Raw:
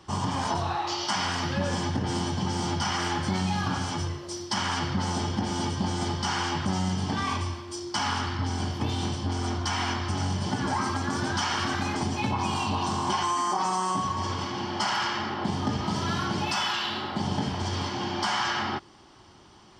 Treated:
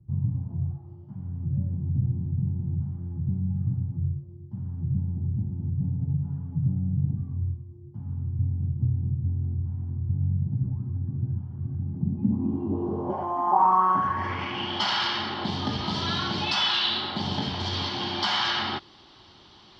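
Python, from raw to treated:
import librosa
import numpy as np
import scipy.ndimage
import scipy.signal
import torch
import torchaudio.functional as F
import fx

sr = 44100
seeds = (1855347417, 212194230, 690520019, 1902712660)

y = fx.comb(x, sr, ms=7.1, depth=0.91, at=(5.8, 7.08))
y = fx.filter_sweep_lowpass(y, sr, from_hz=130.0, to_hz=3900.0, start_s=11.84, end_s=14.88, q=4.2)
y = y * 10.0 ** (-1.5 / 20.0)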